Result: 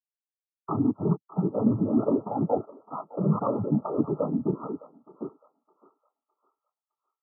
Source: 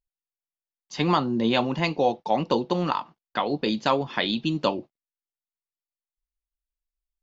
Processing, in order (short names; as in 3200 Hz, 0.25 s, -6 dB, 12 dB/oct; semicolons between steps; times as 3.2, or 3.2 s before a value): slices in reverse order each 0.226 s, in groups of 3; dynamic EQ 840 Hz, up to -6 dB, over -36 dBFS, Q 1.1; flange 1.2 Hz, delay 5.1 ms, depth 3.3 ms, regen -57%; sample leveller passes 5; noise vocoder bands 12; brick-wall FIR low-pass 1400 Hz; on a send: thinning echo 0.61 s, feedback 62%, high-pass 820 Hz, level -8.5 dB; on the sum: spectral expander 1.5:1; gain -7 dB